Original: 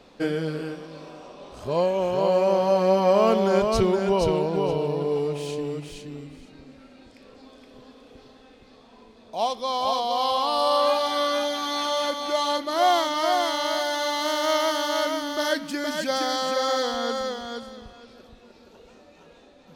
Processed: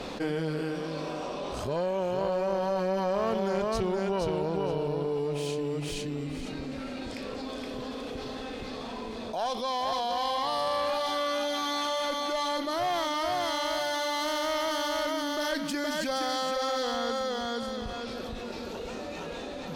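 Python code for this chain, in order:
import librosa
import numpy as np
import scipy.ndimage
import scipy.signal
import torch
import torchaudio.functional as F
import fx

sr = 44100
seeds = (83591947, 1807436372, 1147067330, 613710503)

y = fx.tube_stage(x, sr, drive_db=12.0, bias=0.6)
y = fx.env_flatten(y, sr, amount_pct=70)
y = y * 10.0 ** (-7.5 / 20.0)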